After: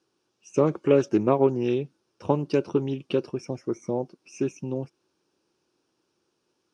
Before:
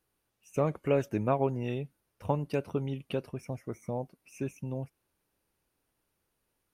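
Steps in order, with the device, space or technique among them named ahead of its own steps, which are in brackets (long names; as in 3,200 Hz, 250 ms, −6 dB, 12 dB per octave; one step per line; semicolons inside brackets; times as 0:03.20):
full-range speaker at full volume (highs frequency-modulated by the lows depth 0.16 ms; loudspeaker in its box 160–7,300 Hz, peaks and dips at 350 Hz +9 dB, 670 Hz −4 dB, 2,000 Hz −9 dB, 5,400 Hz +7 dB)
level +6.5 dB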